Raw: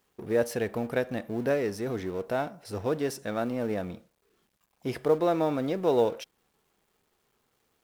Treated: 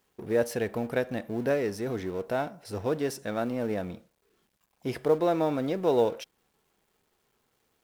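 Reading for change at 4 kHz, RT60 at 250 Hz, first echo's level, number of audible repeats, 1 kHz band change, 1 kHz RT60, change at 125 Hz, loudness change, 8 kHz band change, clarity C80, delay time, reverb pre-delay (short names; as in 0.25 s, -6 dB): 0.0 dB, none, none, none, 0.0 dB, none, 0.0 dB, 0.0 dB, 0.0 dB, none, none, none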